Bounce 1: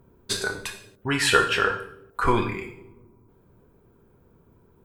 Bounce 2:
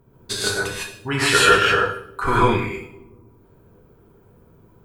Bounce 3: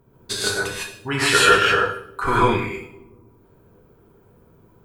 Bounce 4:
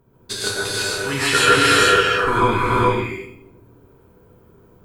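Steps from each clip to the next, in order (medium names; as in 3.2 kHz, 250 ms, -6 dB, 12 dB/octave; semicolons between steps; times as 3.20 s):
gated-style reverb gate 180 ms rising, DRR -6 dB; trim -1 dB
bass shelf 180 Hz -3 dB
gated-style reverb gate 490 ms rising, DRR -1.5 dB; trim -1 dB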